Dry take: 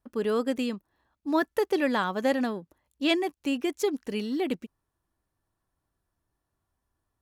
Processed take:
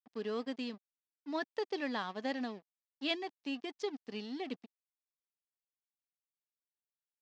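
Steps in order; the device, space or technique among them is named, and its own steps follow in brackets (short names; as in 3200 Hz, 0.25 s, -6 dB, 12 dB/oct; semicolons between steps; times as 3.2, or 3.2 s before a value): blown loudspeaker (crossover distortion -42.5 dBFS; speaker cabinet 210–5500 Hz, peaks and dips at 340 Hz -8 dB, 540 Hz -7 dB, 960 Hz -4 dB, 1400 Hz -7 dB, 2300 Hz -3 dB, 5000 Hz +4 dB); gain -6 dB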